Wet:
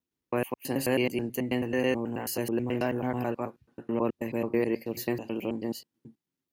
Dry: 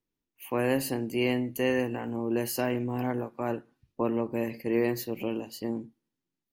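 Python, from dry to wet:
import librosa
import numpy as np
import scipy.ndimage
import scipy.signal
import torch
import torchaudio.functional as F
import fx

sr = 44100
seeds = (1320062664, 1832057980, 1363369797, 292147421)

y = fx.block_reorder(x, sr, ms=108.0, group=3)
y = scipy.signal.sosfilt(scipy.signal.butter(2, 54.0, 'highpass', fs=sr, output='sos'), y)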